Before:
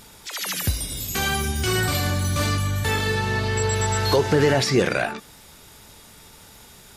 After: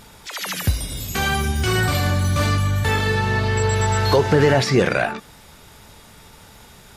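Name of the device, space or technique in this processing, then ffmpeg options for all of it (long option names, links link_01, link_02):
behind a face mask: -af "equalizer=frequency=330:width=1.4:gain=-3,highshelf=frequency=3400:gain=-7.5,volume=4.5dB"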